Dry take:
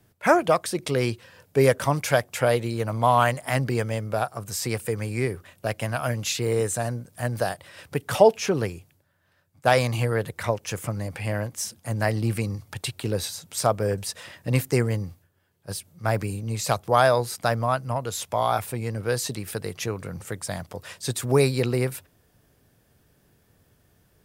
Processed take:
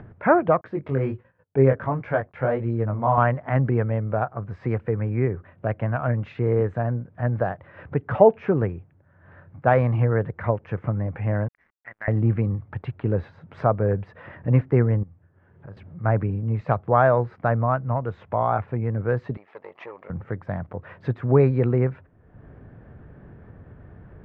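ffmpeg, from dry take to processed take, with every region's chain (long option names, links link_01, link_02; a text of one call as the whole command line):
ffmpeg -i in.wav -filter_complex "[0:a]asettb=1/sr,asplit=3[link_01][link_02][link_03];[link_01]atrim=end=0.614[link_04];[link_02]atrim=start=0.61:end=3.18,asetpts=PTS-STARTPTS,afade=type=in:duration=0.004:curve=qsin,afade=type=out:start_time=2.566:duration=0.004:curve=qsin,agate=range=-35dB:threshold=-49dB:ratio=16:release=100:detection=peak,flanger=delay=17:depth=5.7:speed=1.4[link_05];[link_03]atrim=start=3.176[link_06];[link_04][link_05]acrossfade=duration=0.004:curve1=hsin:curve2=qsin[link_07];[link_07][link_06]acrossfade=duration=0.004:curve1=qsin:curve2=hsin,asettb=1/sr,asplit=3[link_08][link_09][link_10];[link_08]atrim=end=11.484[link_11];[link_09]atrim=start=11.48:end=12.08,asetpts=PTS-STARTPTS,afade=type=in:duration=0.004:curve=qsin,afade=type=out:start_time=0.596:duration=0.004:curve=qsin,lowpass=frequency=2000:width_type=q:width=8.1,aderivative,aeval=exprs='sgn(val(0))*max(abs(val(0))-0.00251,0)':channel_layout=same[link_12];[link_10]atrim=start=12.076[link_13];[link_11][link_12]acrossfade=duration=0.004:curve1=hsin:curve2=qsin[link_14];[link_14][link_13]acrossfade=duration=0.004:curve1=qsin:curve2=hsin,asettb=1/sr,asplit=3[link_15][link_16][link_17];[link_15]atrim=end=15.034[link_18];[link_16]atrim=start=15.03:end=15.77,asetpts=PTS-STARTPTS,afade=type=in:duration=0.004:curve=qsin,afade=type=out:start_time=0.736:duration=0.004:curve=qsin,acompressor=threshold=-53dB:ratio=3:attack=3.2:release=140:knee=1:detection=peak,asplit=2[link_19][link_20];[link_20]adelay=48,volume=-13dB[link_21];[link_19][link_21]amix=inputs=2:normalize=0,atrim=end_sample=32634[link_22];[link_17]atrim=start=15.766[link_23];[link_18][link_22]acrossfade=duration=0.004:curve1=hsin:curve2=qsin[link_24];[link_24][link_23]acrossfade=duration=0.004:curve1=qsin:curve2=hsin,asettb=1/sr,asplit=3[link_25][link_26][link_27];[link_25]atrim=end=19.374[link_28];[link_26]atrim=start=19.37:end=20.1,asetpts=PTS-STARTPTS,afade=type=in:duration=0.004:curve=qsin,afade=type=out:start_time=0.726:duration=0.004:curve=qsin,aeval=exprs='if(lt(val(0),0),0.251*val(0),val(0))':channel_layout=same,highpass=780,equalizer=frequency=1500:width_type=o:width=0.3:gain=-13[link_29];[link_27]atrim=start=20.096[link_30];[link_28][link_29]acrossfade=duration=0.004:curve1=hsin:curve2=qsin[link_31];[link_31][link_30]acrossfade=duration=0.004:curve1=qsin:curve2=hsin,lowpass=frequency=1800:width=0.5412,lowpass=frequency=1800:width=1.3066,lowshelf=frequency=280:gain=6,acompressor=mode=upward:threshold=-32dB:ratio=2.5" out.wav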